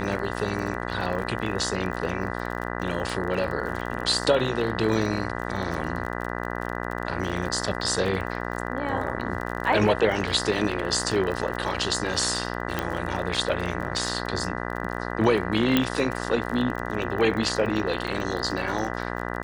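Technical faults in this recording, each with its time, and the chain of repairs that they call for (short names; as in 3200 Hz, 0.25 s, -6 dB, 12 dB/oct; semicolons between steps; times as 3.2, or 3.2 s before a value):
buzz 60 Hz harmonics 33 -31 dBFS
crackle 32/s -31 dBFS
12.79 pop -11 dBFS
15.77 pop -7 dBFS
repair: de-click; de-hum 60 Hz, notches 33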